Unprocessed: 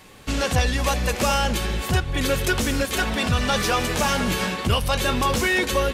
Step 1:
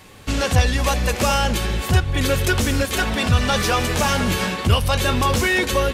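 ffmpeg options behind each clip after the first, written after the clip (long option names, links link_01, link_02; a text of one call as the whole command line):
ffmpeg -i in.wav -af "equalizer=frequency=90:width=2.6:gain=6.5,volume=2dB" out.wav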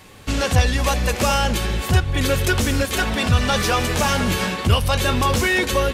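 ffmpeg -i in.wav -af anull out.wav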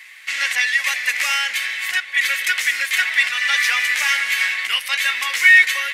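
ffmpeg -i in.wav -af "highpass=frequency=2000:width_type=q:width=7.4,volume=-1dB" out.wav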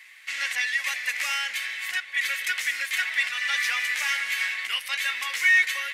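ffmpeg -i in.wav -af "asoftclip=type=tanh:threshold=-2.5dB,volume=-7.5dB" out.wav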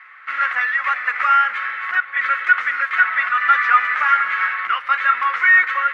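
ffmpeg -i in.wav -af "lowpass=frequency=1300:width_type=q:width=8.8,volume=7.5dB" out.wav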